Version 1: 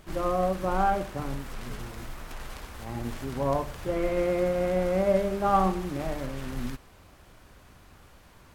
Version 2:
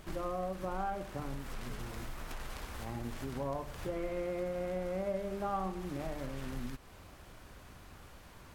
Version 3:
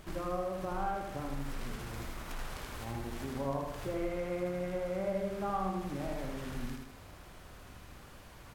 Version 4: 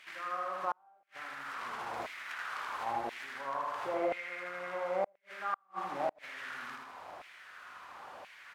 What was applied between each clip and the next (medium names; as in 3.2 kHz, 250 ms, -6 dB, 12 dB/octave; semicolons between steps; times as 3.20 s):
compression 2.5:1, threshold -39 dBFS, peak gain reduction 14 dB
feedback delay 79 ms, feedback 48%, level -4 dB
RIAA curve playback; LFO high-pass saw down 0.97 Hz 680–2300 Hz; inverted gate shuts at -26 dBFS, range -40 dB; trim +5 dB